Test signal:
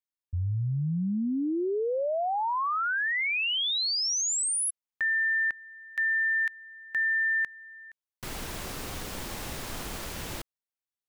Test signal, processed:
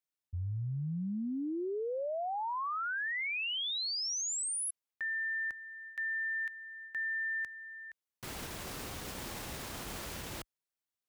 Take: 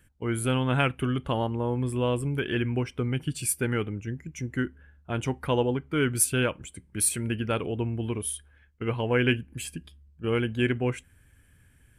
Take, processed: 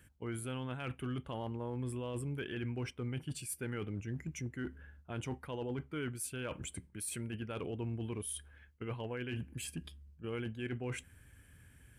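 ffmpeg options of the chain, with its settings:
-af "highpass=41,areverse,acompressor=threshold=0.02:ratio=6:attack=0.11:release=274:knee=1:detection=peak,areverse"

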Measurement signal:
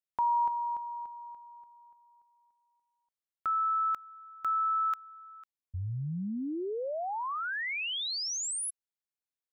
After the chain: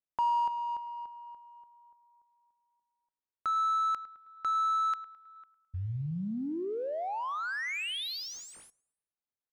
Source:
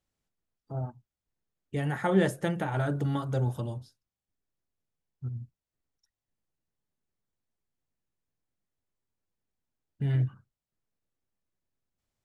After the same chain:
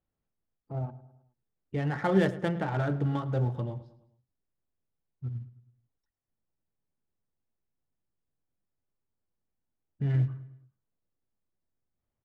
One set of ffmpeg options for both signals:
-af "acrusher=bits=8:mode=log:mix=0:aa=0.000001,aecho=1:1:106|212|318|424:0.158|0.0777|0.0381|0.0186,adynamicsmooth=sensitivity=7:basefreq=1900"

